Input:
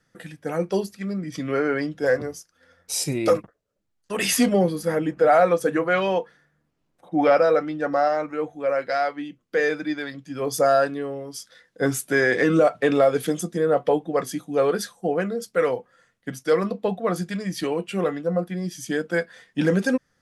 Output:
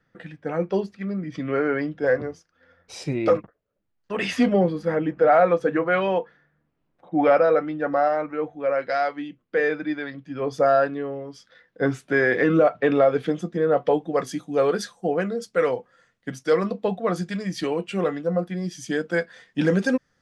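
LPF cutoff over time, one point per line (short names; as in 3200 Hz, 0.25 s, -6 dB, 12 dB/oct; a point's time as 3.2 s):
8.56 s 2900 Hz
9.15 s 6500 Hz
9.43 s 2900 Hz
13.56 s 2900 Hz
14.04 s 7200 Hz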